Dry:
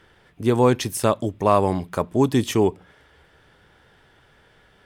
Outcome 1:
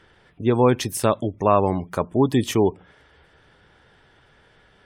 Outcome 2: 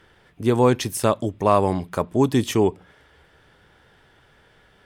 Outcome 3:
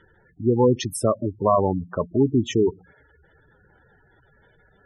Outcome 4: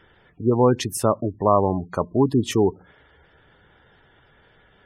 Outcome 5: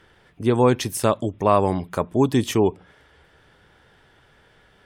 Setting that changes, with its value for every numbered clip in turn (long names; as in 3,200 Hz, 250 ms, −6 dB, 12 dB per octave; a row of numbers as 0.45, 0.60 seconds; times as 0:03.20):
gate on every frequency bin, under each frame's peak: −35, −60, −10, −20, −45 decibels